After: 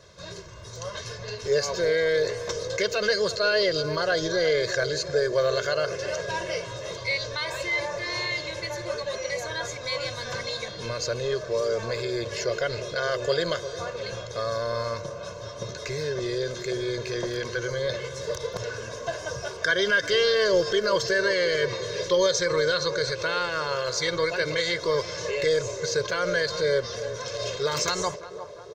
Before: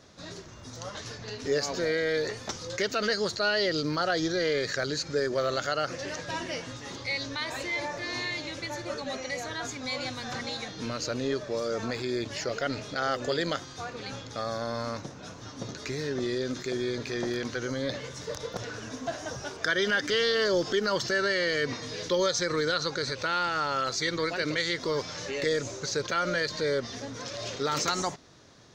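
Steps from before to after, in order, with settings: comb 1.9 ms, depth 97%; on a send: narrowing echo 0.353 s, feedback 75%, band-pass 600 Hz, level -11 dB

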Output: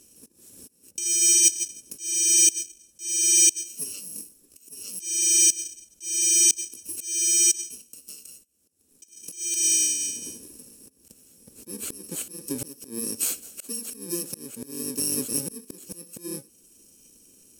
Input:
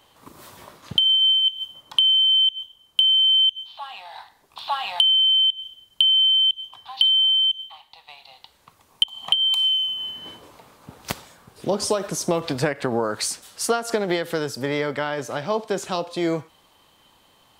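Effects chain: FFT order left unsorted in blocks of 64 samples; graphic EQ 125/250/500/1000/2000/4000/8000 Hz -7/+8/+6/-10/-5/-5/+9 dB; auto swell 0.545 s; Vorbis 64 kbps 44100 Hz

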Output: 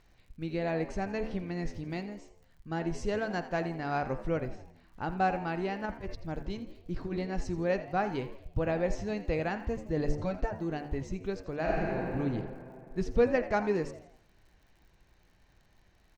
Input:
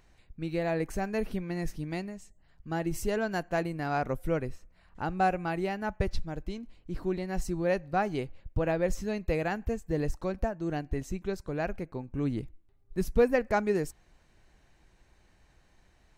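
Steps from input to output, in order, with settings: LPF 6200 Hz 24 dB/oct; de-hum 73.79 Hz, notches 37; 5.84–7.27 negative-ratio compressor -32 dBFS, ratio -0.5; 9.96–10.51 comb 6.7 ms, depth 76%; crackle 84/s -54 dBFS; 11.6–12.13 reverb throw, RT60 2.6 s, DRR -5 dB; frequency-shifting echo 83 ms, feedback 47%, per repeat +79 Hz, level -15 dB; gain -1.5 dB

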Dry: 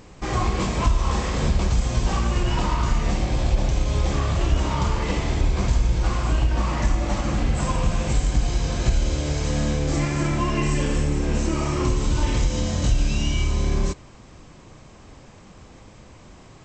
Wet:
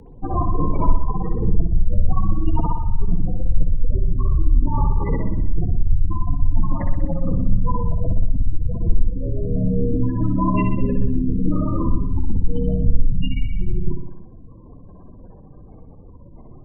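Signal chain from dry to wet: octaver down 2 oct, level -2 dB; spectral gate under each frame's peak -15 dB strong; frequency shift -33 Hz; on a send: reverb, pre-delay 59 ms, DRR 4 dB; on the sum: gain +3 dB

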